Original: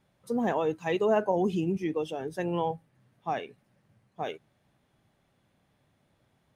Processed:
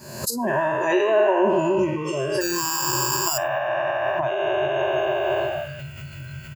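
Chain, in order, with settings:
peak hold with a decay on every bin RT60 2.40 s
camcorder AGC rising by 53 dB per second
0:02.41–0:03.38: sample-rate reduction 2,100 Hz, jitter 0%
high-pass filter 92 Hz
high shelf with overshoot 4,200 Hz +7.5 dB, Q 3
in parallel at −3 dB: brickwall limiter −17.5 dBFS, peak gain reduction 15 dB
on the sum: EQ curve with evenly spaced ripples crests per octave 1.4, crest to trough 14 dB
echo with shifted repeats 102 ms, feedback 42%, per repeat +150 Hz, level −19 dB
noise reduction from a noise print of the clip's start 20 dB
background raised ahead of every attack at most 54 dB per second
level −3 dB

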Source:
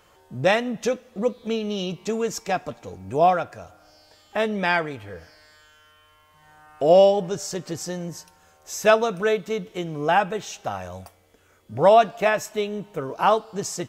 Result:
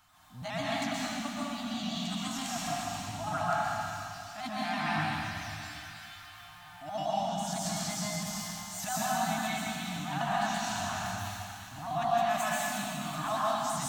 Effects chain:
pitch shifter gated in a rhythm +2.5 semitones, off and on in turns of 83 ms
high-shelf EQ 6,900 Hz +6.5 dB
on a send: delay with a high-pass on its return 349 ms, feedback 68%, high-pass 1,900 Hz, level −15 dB
on the sum: downward compressor 3 to 1, threshold −28 dBFS, peak gain reduction 13 dB
elliptic band-stop filter 280–720 Hz, stop band 40 dB
transient designer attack −9 dB, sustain +11 dB
thirty-one-band graphic EQ 100 Hz +6 dB, 630 Hz +8 dB, 1,250 Hz +5 dB, 4,000 Hz +4 dB
dense smooth reverb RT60 2.3 s, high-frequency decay 1×, pre-delay 110 ms, DRR −7 dB
level −8.5 dB

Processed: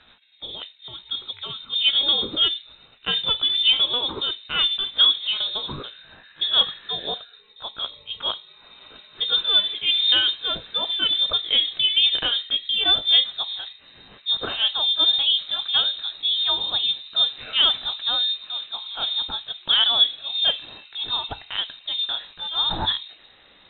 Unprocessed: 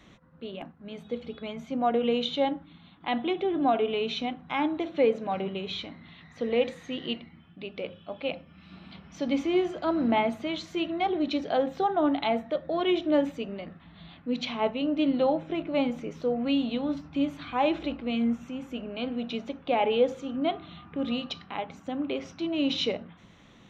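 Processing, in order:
pitch glide at a constant tempo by +3 semitones ending unshifted
voice inversion scrambler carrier 3,900 Hz
low-pass that shuts in the quiet parts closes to 2,500 Hz, open at −24.5 dBFS
level +6.5 dB

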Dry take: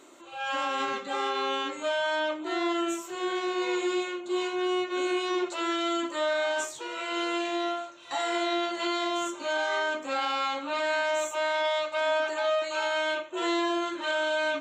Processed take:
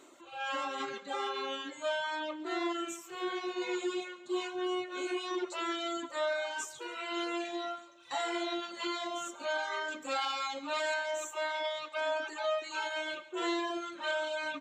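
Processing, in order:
reverb reduction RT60 1.9 s
0:09.88–0:10.94: high-shelf EQ 5,400 Hz +11 dB
repeating echo 140 ms, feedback 48%, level −18 dB
level −3.5 dB

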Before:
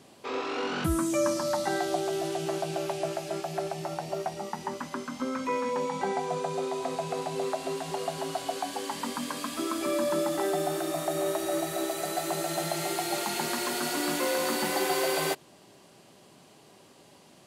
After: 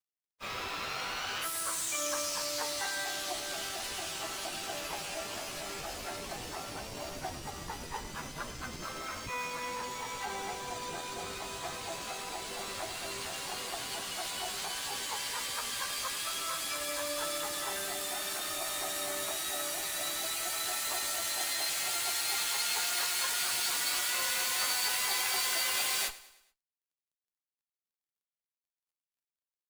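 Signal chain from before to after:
stylus tracing distortion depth 0.032 ms
high-pass filter 1,200 Hz 12 dB per octave
noise gate −49 dBFS, range −9 dB
high-shelf EQ 2,400 Hz +8.5 dB
in parallel at −4.5 dB: comparator with hysteresis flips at −36.5 dBFS
on the sum: time stretch by phase vocoder 1.7×
dead-zone distortion −57 dBFS
pitch-shifted copies added −12 semitones −11 dB
on a send: repeating echo 106 ms, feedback 48%, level −18 dB
on the sum: level −3 dB

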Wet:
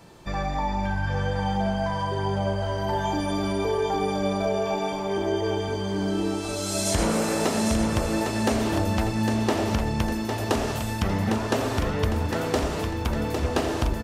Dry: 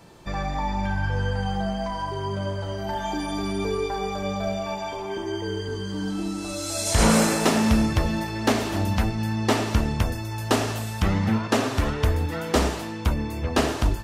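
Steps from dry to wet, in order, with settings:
dynamic equaliser 510 Hz, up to +5 dB, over −33 dBFS, Q 0.96
downward compressor, threshold −21 dBFS, peak gain reduction 9 dB
on a send: repeating echo 805 ms, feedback 48%, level −6 dB

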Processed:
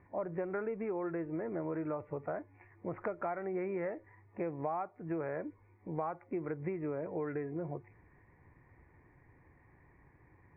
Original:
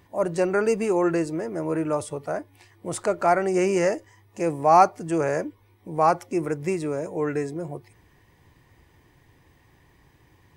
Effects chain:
Butterworth low-pass 2,400 Hz 96 dB per octave
downward compressor 16 to 1, threshold −28 dBFS, peak gain reduction 19 dB
level −5 dB

